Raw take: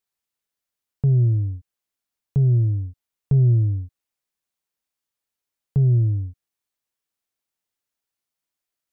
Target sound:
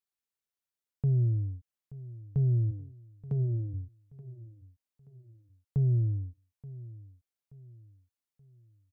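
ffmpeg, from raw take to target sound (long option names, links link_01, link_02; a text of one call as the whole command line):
ffmpeg -i in.wav -filter_complex "[0:a]asplit=3[link_01][link_02][link_03];[link_01]afade=type=out:start_time=2.7:duration=0.02[link_04];[link_02]highpass=150,afade=type=in:start_time=2.7:duration=0.02,afade=type=out:start_time=3.73:duration=0.02[link_05];[link_03]afade=type=in:start_time=3.73:duration=0.02[link_06];[link_04][link_05][link_06]amix=inputs=3:normalize=0,aecho=1:1:878|1756|2634:0.126|0.0491|0.0191,volume=-8.5dB" out.wav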